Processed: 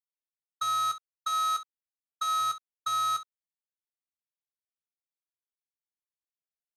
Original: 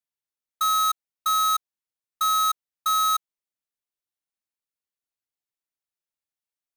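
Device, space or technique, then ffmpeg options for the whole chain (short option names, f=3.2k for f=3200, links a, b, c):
slapback doubling: -filter_complex "[0:a]asettb=1/sr,asplit=3[a][b][c];[a]atrim=end=1.274[d];[b]atrim=start=1.27:end=2.4,asetpts=PTS-STARTPTS,afade=t=in:d=0.004:c=qsin,afade=t=out:st=1.126:d=0.004:c=qsin,highpass=240[e];[c]atrim=start=2.396[f];[d][e]acrossfade=d=0.004:c1=hsin:c2=qsin[g];[g][f]acrossfade=d=0.004:c1=qsin:c2=hsin,asplit=3[h][i][j];[i]adelay=16,volume=-7.5dB[k];[j]adelay=64,volume=-11dB[l];[h][k][l]amix=inputs=3:normalize=0,agate=range=-33dB:threshold=-23dB:ratio=3:detection=peak,lowpass=6.6k,volume=-3dB"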